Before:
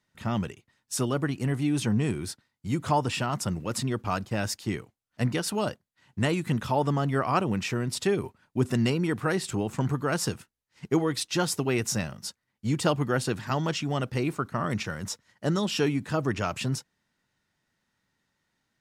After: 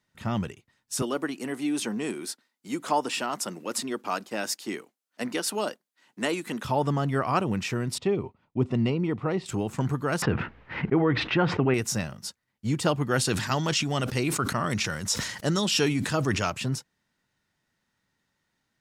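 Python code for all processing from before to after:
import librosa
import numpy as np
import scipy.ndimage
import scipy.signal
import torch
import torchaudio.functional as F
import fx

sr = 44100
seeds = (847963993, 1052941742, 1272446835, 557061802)

y = fx.chain(x, sr, fx.highpass(hz=240.0, slope=24),
    fx.high_shelf(hz=5200.0, db=4.0), at=(1.02, 6.65))
y = fx.chain(y, sr, fx.lowpass(hz=2600.0, slope=12),
    fx.peak_eq(hz=1600.0, db=-14.0, octaves=0.34), at=(7.98, 9.46))
y = fx.chain(y, sr, fx.lowpass(hz=2400.0, slope=24),
    fx.env_flatten(amount_pct=70), at=(10.22, 11.74))
y = fx.chain(y, sr, fx.peak_eq(hz=7000.0, db=8.0, octaves=2.9),
    fx.sustainer(db_per_s=59.0), at=(13.11, 16.5))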